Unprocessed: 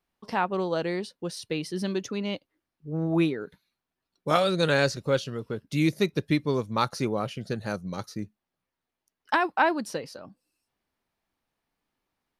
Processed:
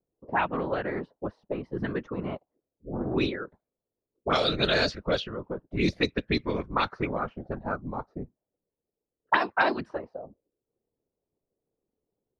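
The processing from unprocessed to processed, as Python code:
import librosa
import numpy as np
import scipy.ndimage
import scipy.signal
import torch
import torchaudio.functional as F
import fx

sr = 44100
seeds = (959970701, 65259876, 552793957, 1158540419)

y = fx.whisperise(x, sr, seeds[0])
y = fx.envelope_lowpass(y, sr, base_hz=460.0, top_hz=5000.0, q=3.3, full_db=-18.5, direction='up')
y = y * librosa.db_to_amplitude(-3.0)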